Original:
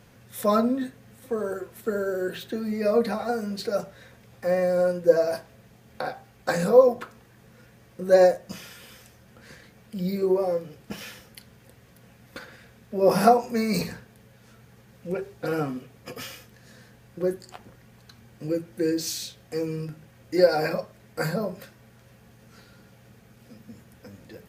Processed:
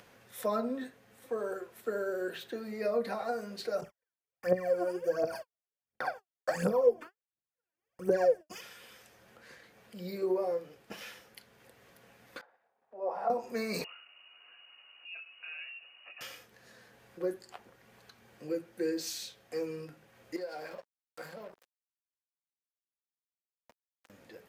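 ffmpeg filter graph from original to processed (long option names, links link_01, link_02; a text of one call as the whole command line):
ffmpeg -i in.wav -filter_complex "[0:a]asettb=1/sr,asplit=3[link_01][link_02][link_03];[link_01]atrim=end=3.814[link_04];[link_02]atrim=start=3.81:end=8.61,asetpts=PTS-STARTPTS,afade=type=in:duration=0.004:curve=qsin,afade=type=out:start_time=4.796:duration=0.004:curve=qsin,agate=range=-48dB:threshold=-44dB:ratio=16:release=100:detection=peak,aphaser=in_gain=1:out_gain=1:delay=3.4:decay=0.79:speed=1.4:type=triangular,asuperstop=centerf=3900:order=4:qfactor=4.7[link_05];[link_03]atrim=start=8.606[link_06];[link_04][link_05]acrossfade=duration=0.004:curve1=hsin:curve2=qsin[link_07];[link_07][link_06]acrossfade=duration=0.004:curve1=qsin:curve2=hsin,asettb=1/sr,asplit=3[link_08][link_09][link_10];[link_08]atrim=end=12.414[link_11];[link_09]atrim=start=12.41:end=13.3,asetpts=PTS-STARTPTS,afade=type=in:duration=0.004:curve=qsin,afade=type=out:start_time=0.886:duration=0.004:curve=qsin,agate=range=-33dB:threshold=-45dB:ratio=3:release=100:detection=peak,bandpass=frequency=790:width_type=q:width=3.3[link_12];[link_10]atrim=start=13.296[link_13];[link_11][link_12]acrossfade=duration=0.004:curve1=hsin:curve2=qsin[link_14];[link_14][link_13]acrossfade=duration=0.004:curve1=qsin:curve2=hsin,asettb=1/sr,asplit=3[link_15][link_16][link_17];[link_15]atrim=end=13.844[link_18];[link_16]atrim=start=13.84:end=16.21,asetpts=PTS-STARTPTS,afade=type=in:duration=0.004:curve=qsin,afade=type=out:start_time=2.366:duration=0.004:curve=qsin,acompressor=threshold=-46dB:ratio=2:attack=3.2:release=140:knee=1:detection=peak,lowpass=frequency=2600:width_type=q:width=0.5098,lowpass=frequency=2600:width_type=q:width=0.6013,lowpass=frequency=2600:width_type=q:width=0.9,lowpass=frequency=2600:width_type=q:width=2.563,afreqshift=-3000[link_19];[link_17]atrim=start=16.206[link_20];[link_18][link_19]acrossfade=duration=0.004:curve1=hsin:curve2=qsin[link_21];[link_21][link_20]acrossfade=duration=0.004:curve1=qsin:curve2=hsin,asettb=1/sr,asplit=3[link_22][link_23][link_24];[link_22]atrim=end=20.364[link_25];[link_23]atrim=start=20.36:end=24.1,asetpts=PTS-STARTPTS,afade=type=in:duration=0.004:curve=qsin,afade=type=out:start_time=3.736:duration=0.004:curve=qsin,aeval=exprs='sgn(val(0))*max(abs(val(0))-0.0141,0)':channel_layout=same,acompressor=threshold=-38dB:ratio=2.5:attack=3.2:release=140:knee=1:detection=peak[link_26];[link_24]atrim=start=24.096[link_27];[link_25][link_26]acrossfade=duration=0.004:curve1=hsin:curve2=qsin[link_28];[link_28][link_27]acrossfade=duration=0.004:curve1=qsin:curve2=hsin,acrossover=split=390[link_29][link_30];[link_30]acompressor=threshold=-25dB:ratio=6[link_31];[link_29][link_31]amix=inputs=2:normalize=0,bass=frequency=250:gain=-14,treble=frequency=4000:gain=-4,acompressor=mode=upward:threshold=-49dB:ratio=2.5,volume=-4.5dB" out.wav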